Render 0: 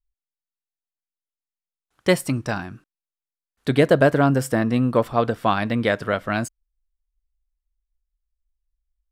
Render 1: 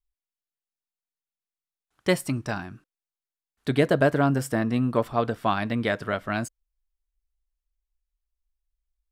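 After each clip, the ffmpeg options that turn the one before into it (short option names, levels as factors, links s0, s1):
-af "bandreject=f=510:w=12,volume=0.631"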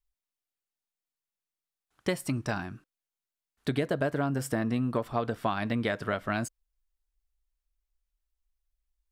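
-af "acompressor=threshold=0.0562:ratio=6"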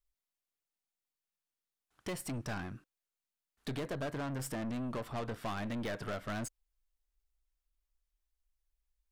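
-af "aeval=exprs='0.188*(cos(1*acos(clip(val(0)/0.188,-1,1)))-cos(1*PI/2))+0.0211*(cos(8*acos(clip(val(0)/0.188,-1,1)))-cos(8*PI/2))':c=same,asoftclip=type=tanh:threshold=0.0282,volume=0.794"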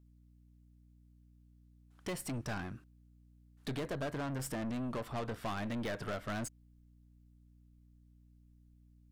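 -af "aeval=exprs='val(0)+0.000891*(sin(2*PI*60*n/s)+sin(2*PI*2*60*n/s)/2+sin(2*PI*3*60*n/s)/3+sin(2*PI*4*60*n/s)/4+sin(2*PI*5*60*n/s)/5)':c=same"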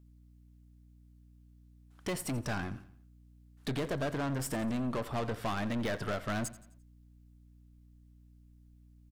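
-af "aecho=1:1:86|172|258|344:0.141|0.0622|0.0273|0.012,volume=1.58"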